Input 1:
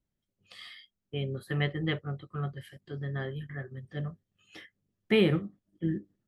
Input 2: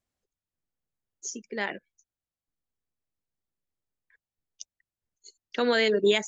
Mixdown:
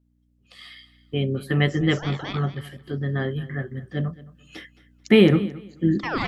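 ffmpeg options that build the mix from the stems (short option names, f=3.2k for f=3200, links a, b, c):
-filter_complex "[0:a]aeval=exprs='val(0)+0.000631*(sin(2*PI*60*n/s)+sin(2*PI*2*60*n/s)/2+sin(2*PI*3*60*n/s)/3+sin(2*PI*4*60*n/s)/4+sin(2*PI*5*60*n/s)/5)':c=same,volume=-1dB,asplit=3[a][b][c];[b]volume=-19dB[d];[1:a]lowpass=4.7k,deesser=0.75,aeval=exprs='val(0)*sin(2*PI*910*n/s+910*0.75/1.8*sin(2*PI*1.8*n/s))':c=same,adelay=450,volume=-3dB,asplit=2[e][f];[f]volume=-7dB[g];[c]apad=whole_len=296783[h];[e][h]sidechaincompress=threshold=-36dB:ratio=3:attack=8.4:release=1080[i];[d][g]amix=inputs=2:normalize=0,aecho=0:1:219|438|657:1|0.2|0.04[j];[a][i][j]amix=inputs=3:normalize=0,dynaudnorm=f=140:g=11:m=9dB,equalizer=f=260:w=2.2:g=6.5"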